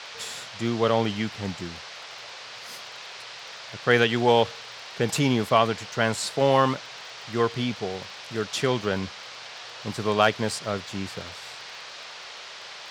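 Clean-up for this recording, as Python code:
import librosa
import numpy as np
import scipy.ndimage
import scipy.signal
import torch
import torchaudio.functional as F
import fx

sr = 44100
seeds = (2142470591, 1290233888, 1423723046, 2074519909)

y = fx.fix_declip(x, sr, threshold_db=-6.5)
y = fx.fix_declick_ar(y, sr, threshold=6.5)
y = fx.noise_reduce(y, sr, print_start_s=12.31, print_end_s=12.81, reduce_db=28.0)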